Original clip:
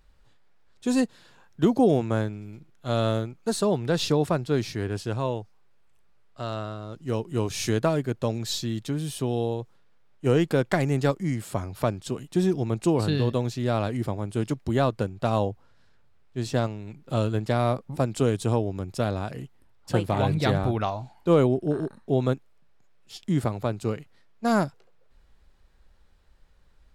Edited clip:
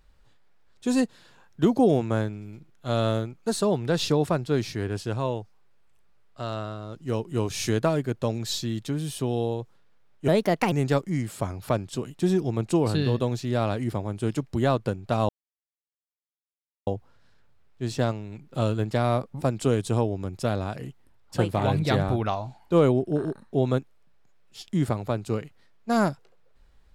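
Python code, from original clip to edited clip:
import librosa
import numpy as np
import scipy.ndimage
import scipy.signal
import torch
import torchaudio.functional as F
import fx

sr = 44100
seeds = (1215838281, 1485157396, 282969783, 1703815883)

y = fx.edit(x, sr, fx.speed_span(start_s=10.28, length_s=0.57, speed=1.3),
    fx.insert_silence(at_s=15.42, length_s=1.58), tone=tone)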